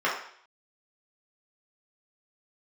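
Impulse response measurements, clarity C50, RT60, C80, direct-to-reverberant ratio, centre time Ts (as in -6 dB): 4.5 dB, 0.60 s, 8.5 dB, -6.5 dB, 37 ms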